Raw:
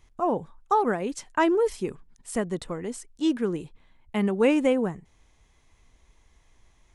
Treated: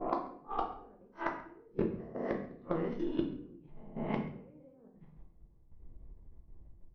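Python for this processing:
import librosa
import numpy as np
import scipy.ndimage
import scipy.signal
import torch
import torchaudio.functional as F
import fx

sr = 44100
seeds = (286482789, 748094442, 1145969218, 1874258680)

y = fx.spec_swells(x, sr, rise_s=0.75)
y = fx.env_lowpass(y, sr, base_hz=360.0, full_db=-20.5)
y = fx.highpass(y, sr, hz=180.0, slope=12, at=(1.91, 2.48))
y = fx.env_lowpass_down(y, sr, base_hz=720.0, full_db=-22.0)
y = fx.high_shelf(y, sr, hz=4900.0, db=7.0)
y = fx.level_steps(y, sr, step_db=14)
y = fx.gate_flip(y, sr, shuts_db=-24.0, range_db=-35)
y = fx.cheby_harmonics(y, sr, harmonics=(7,), levels_db=(-27,), full_scale_db=-22.5)
y = fx.brickwall_lowpass(y, sr, high_hz=6200.0)
y = y + 10.0 ** (-21.5 / 20.0) * np.pad(y, (int(135 * sr / 1000.0), 0))[:len(y)]
y = fx.room_shoebox(y, sr, seeds[0], volume_m3=93.0, walls='mixed', distance_m=0.76)
y = y * 10.0 ** (6.0 / 20.0)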